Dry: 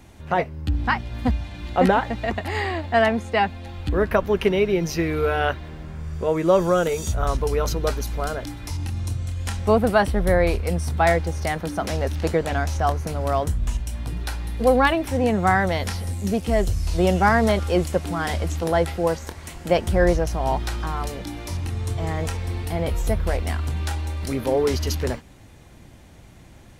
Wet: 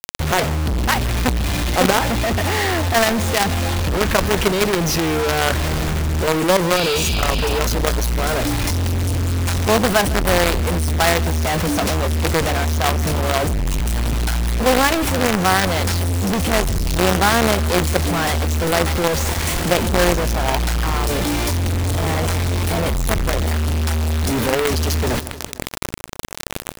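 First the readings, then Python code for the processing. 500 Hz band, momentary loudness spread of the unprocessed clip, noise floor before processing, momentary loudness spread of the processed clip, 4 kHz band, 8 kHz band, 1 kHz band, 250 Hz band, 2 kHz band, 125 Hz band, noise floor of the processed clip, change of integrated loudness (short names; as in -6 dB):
+1.5 dB, 10 LU, -46 dBFS, 5 LU, +12.0 dB, +12.5 dB, +3.5 dB, +4.0 dB, +6.0 dB, +5.5 dB, -28 dBFS, +4.5 dB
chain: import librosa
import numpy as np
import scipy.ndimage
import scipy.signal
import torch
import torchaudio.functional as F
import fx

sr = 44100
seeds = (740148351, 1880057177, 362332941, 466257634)

y = fx.quant_companded(x, sr, bits=2)
y = 10.0 ** (-7.5 / 20.0) * np.tanh(y / 10.0 ** (-7.5 / 20.0))
y = fx.spec_repair(y, sr, seeds[0], start_s=6.77, length_s=0.79, low_hz=2300.0, high_hz=5200.0, source='both')
y = fx.echo_feedback(y, sr, ms=153, feedback_pct=40, wet_db=-23.5)
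y = fx.env_flatten(y, sr, amount_pct=50)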